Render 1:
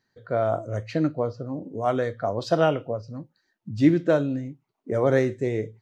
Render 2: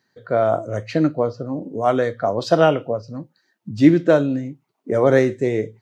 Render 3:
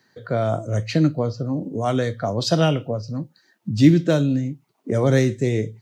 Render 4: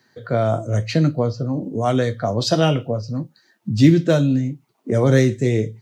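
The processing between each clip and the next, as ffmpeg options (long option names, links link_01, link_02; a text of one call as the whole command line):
ffmpeg -i in.wav -af "highpass=130,volume=6dB" out.wav
ffmpeg -i in.wav -filter_complex "[0:a]acrossover=split=210|3000[link_01][link_02][link_03];[link_02]acompressor=threshold=-52dB:ratio=1.5[link_04];[link_01][link_04][link_03]amix=inputs=3:normalize=0,volume=7dB" out.wav
ffmpeg -i in.wav -af "flanger=delay=8:depth=1:regen=-57:speed=0.98:shape=triangular,volume=6dB" out.wav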